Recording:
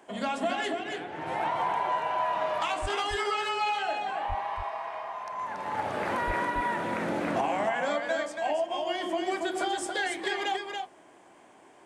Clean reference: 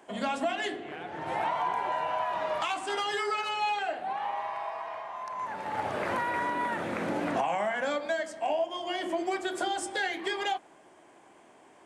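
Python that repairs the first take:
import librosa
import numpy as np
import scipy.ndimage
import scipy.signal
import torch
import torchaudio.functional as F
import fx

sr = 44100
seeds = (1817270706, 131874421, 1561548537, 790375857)

y = fx.fix_deplosive(x, sr, at_s=(2.81, 4.28, 6.26))
y = fx.fix_echo_inverse(y, sr, delay_ms=281, level_db=-5.0)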